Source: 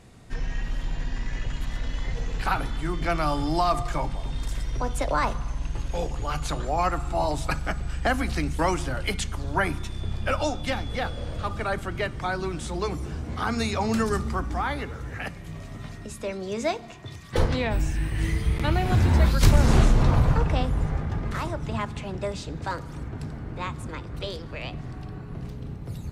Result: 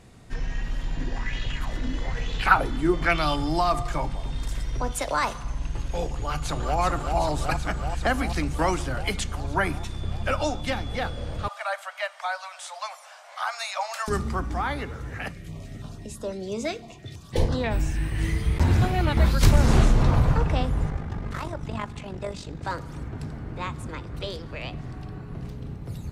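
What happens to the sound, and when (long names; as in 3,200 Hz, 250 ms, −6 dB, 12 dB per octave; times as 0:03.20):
0:00.97–0:03.36: auto-filter bell 1.1 Hz 250–3,700 Hz +13 dB
0:04.92–0:05.43: spectral tilt +2 dB per octave
0:06.09–0:06.80: delay throw 380 ms, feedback 80%, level −4.5 dB
0:11.48–0:14.08: Butterworth high-pass 570 Hz 96 dB per octave
0:15.32–0:17.64: notch on a step sequencer 6 Hz 910–2,300 Hz
0:18.60–0:19.17: reverse
0:20.90–0:22.65: amplitude modulation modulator 49 Hz, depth 45%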